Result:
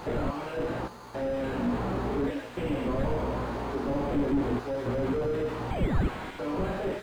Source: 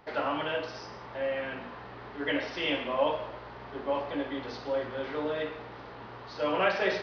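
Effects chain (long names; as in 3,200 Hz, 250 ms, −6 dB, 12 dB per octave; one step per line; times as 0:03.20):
fade-out on the ending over 0.63 s
thirty-one-band graphic EQ 250 Hz +4 dB, 630 Hz −3 dB, 2,000 Hz −5 dB
in parallel at −0.5 dB: downward compressor, threshold −40 dBFS, peak gain reduction 16.5 dB
on the sum: sample-and-hold tremolo, depth 90%
multi-voice chorus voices 2, 0.38 Hz, delay 18 ms, depth 3 ms
0:05.71–0:06.09: sound drawn into the spectrogram rise 1,100–2,400 Hz −23 dBFS
0:05.70–0:06.39: ring modulation 1,200 Hz
sine wavefolder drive 13 dB, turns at −16 dBFS
bad sample-rate conversion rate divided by 8×, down none, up hold
slew-rate limiting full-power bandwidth 20 Hz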